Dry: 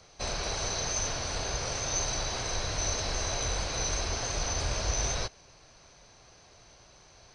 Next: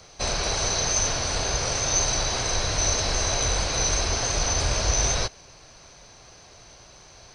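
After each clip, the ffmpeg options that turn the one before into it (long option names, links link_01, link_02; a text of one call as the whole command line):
ffmpeg -i in.wav -af "highshelf=frequency=8400:gain=5.5,volume=6.5dB" out.wav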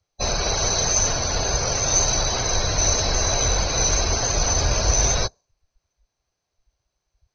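ffmpeg -i in.wav -af "afftdn=noise_reduction=35:noise_floor=-33,volume=4dB" out.wav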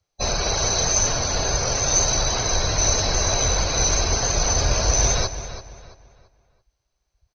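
ffmpeg -i in.wav -filter_complex "[0:a]asplit=2[link_01][link_02];[link_02]adelay=336,lowpass=frequency=4400:poles=1,volume=-11.5dB,asplit=2[link_03][link_04];[link_04]adelay=336,lowpass=frequency=4400:poles=1,volume=0.34,asplit=2[link_05][link_06];[link_06]adelay=336,lowpass=frequency=4400:poles=1,volume=0.34,asplit=2[link_07][link_08];[link_08]adelay=336,lowpass=frequency=4400:poles=1,volume=0.34[link_09];[link_01][link_03][link_05][link_07][link_09]amix=inputs=5:normalize=0" out.wav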